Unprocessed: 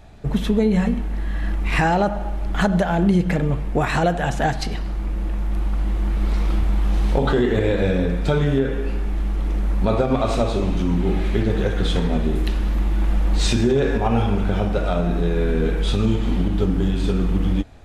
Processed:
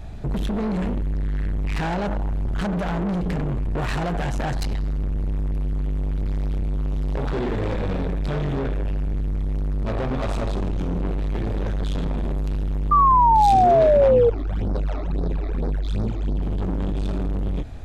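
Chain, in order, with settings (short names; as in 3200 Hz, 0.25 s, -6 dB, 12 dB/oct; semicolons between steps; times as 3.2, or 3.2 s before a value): low shelf 210 Hz +9 dB; limiter -10.5 dBFS, peak gain reduction 8.5 dB; soft clip -25 dBFS, distortion -8 dB; 14.11–16.41 phaser stages 12, 1.3 Hz -> 3.6 Hz, lowest notch 150–2900 Hz; 12.91–14.3 painted sound fall 460–1200 Hz -18 dBFS; gain +3 dB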